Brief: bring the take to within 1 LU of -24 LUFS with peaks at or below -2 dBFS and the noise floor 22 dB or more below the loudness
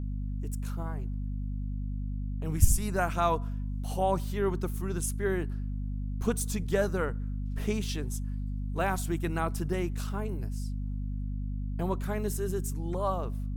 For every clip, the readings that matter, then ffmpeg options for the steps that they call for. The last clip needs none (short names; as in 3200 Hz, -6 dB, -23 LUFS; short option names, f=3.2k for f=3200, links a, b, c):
hum 50 Hz; harmonics up to 250 Hz; hum level -31 dBFS; loudness -32.5 LUFS; peak -7.5 dBFS; loudness target -24.0 LUFS
-> -af "bandreject=f=50:t=h:w=4,bandreject=f=100:t=h:w=4,bandreject=f=150:t=h:w=4,bandreject=f=200:t=h:w=4,bandreject=f=250:t=h:w=4"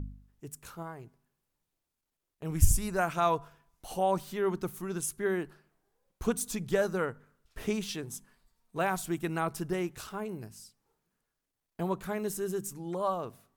hum none; loudness -33.0 LUFS; peak -8.5 dBFS; loudness target -24.0 LUFS
-> -af "volume=9dB,alimiter=limit=-2dB:level=0:latency=1"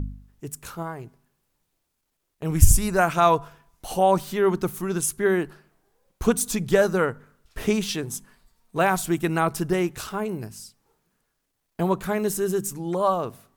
loudness -24.0 LUFS; peak -2.0 dBFS; noise floor -77 dBFS